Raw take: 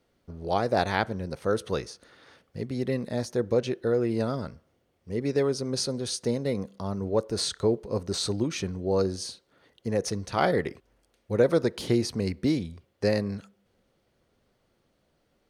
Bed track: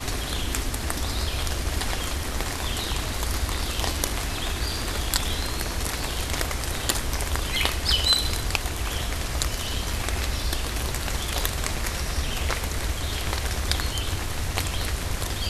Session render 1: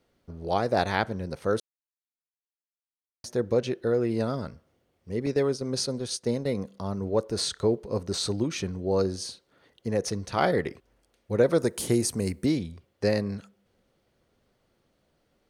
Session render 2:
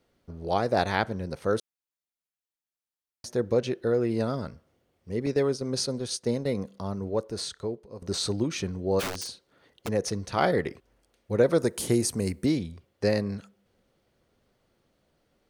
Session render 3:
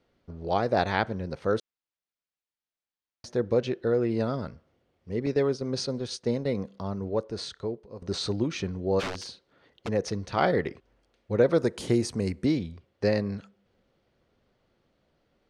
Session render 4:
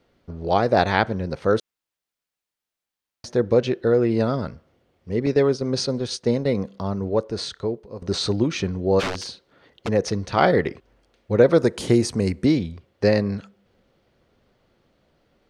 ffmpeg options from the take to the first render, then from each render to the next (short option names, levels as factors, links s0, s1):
-filter_complex "[0:a]asettb=1/sr,asplit=3[s0][s1][s2];[s0]atrim=end=5.264[s3];[s1]atrim=start=5.26:end=6.49,asetpts=PTS-STARTPTS,afade=t=in:d=0.004:c=qsin,afade=t=out:st=1.226:d=0.004:c=qsin,agate=range=0.447:threshold=0.02:ratio=16:release=100:detection=peak[s4];[s2]atrim=start=6.486[s5];[s3][s4]acrossfade=d=0.004:c1=hsin:c2=qsin[s6];[s6][s5]acrossfade=d=0.004:c1=qsin:c2=hsin,asettb=1/sr,asplit=3[s7][s8][s9];[s7]atrim=end=11.584[s10];[s8]atrim=start=11.58:end=12.46,asetpts=PTS-STARTPTS,afade=t=in:d=0.004:c=qsin,afade=t=out:st=0.876:d=0.004:c=qsin,highshelf=f=6100:t=q:w=1.5:g=11[s11];[s9]atrim=start=12.456[s12];[s10][s11]acrossfade=d=0.004:c1=hsin:c2=qsin[s13];[s13][s12]acrossfade=d=0.004:c1=qsin:c2=hsin,asplit=3[s14][s15][s16];[s14]atrim=end=1.6,asetpts=PTS-STARTPTS,afade=t=out:st=1.596:d=0.004:c=hsin[s17];[s15]atrim=start=1.6:end=3.24,asetpts=PTS-STARTPTS,volume=0[s18];[s16]atrim=start=3.24,asetpts=PTS-STARTPTS,afade=t=in:d=0.004:c=hsin[s19];[s17][s18][s19]concat=n=3:v=0:a=1"
-filter_complex "[0:a]asplit=3[s0][s1][s2];[s0]afade=t=out:st=8.99:d=0.02[s3];[s1]aeval=exprs='(mod(21.1*val(0)+1,2)-1)/21.1':c=same,afade=t=in:st=8.99:d=0.02,afade=t=out:st=9.87:d=0.02[s4];[s2]afade=t=in:st=9.87:d=0.02[s5];[s3][s4][s5]amix=inputs=3:normalize=0,asplit=2[s6][s7];[s6]atrim=end=8.02,asetpts=PTS-STARTPTS,afade=t=out:st=6.73:d=1.29:silence=0.16788[s8];[s7]atrim=start=8.02,asetpts=PTS-STARTPTS,afade=t=in:d=0.004:c=hsin:silence=0.16788[s9];[s8][s9]concat=n=2:v=0:a=1"
-af "lowpass=4900"
-af "volume=2.11"